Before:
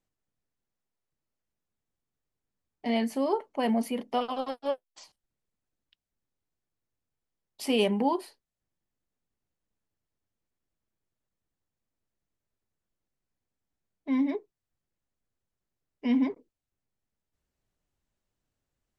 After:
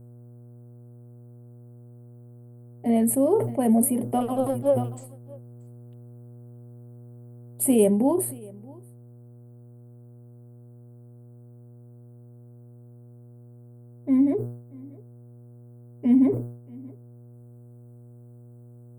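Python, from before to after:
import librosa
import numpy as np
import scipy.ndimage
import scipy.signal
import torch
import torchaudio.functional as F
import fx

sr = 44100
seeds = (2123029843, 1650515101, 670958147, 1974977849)

p1 = fx.notch(x, sr, hz=490.0, q=12.0)
p2 = fx.dmg_buzz(p1, sr, base_hz=120.0, harmonics=13, level_db=-54.0, tilt_db=-9, odd_only=False)
p3 = fx.curve_eq(p2, sr, hz=(570.0, 940.0, 2200.0, 5800.0, 8400.0), db=(0, -13, -16, -27, 8))
p4 = fx.rider(p3, sr, range_db=10, speed_s=0.5)
p5 = p3 + (p4 * 10.0 ** (-3.0 / 20.0))
p6 = fx.high_shelf(p5, sr, hz=10000.0, db=4.5)
p7 = p6 + fx.echo_single(p6, sr, ms=631, db=-24.0, dry=0)
p8 = fx.sustainer(p7, sr, db_per_s=84.0)
y = p8 * 10.0 ** (3.0 / 20.0)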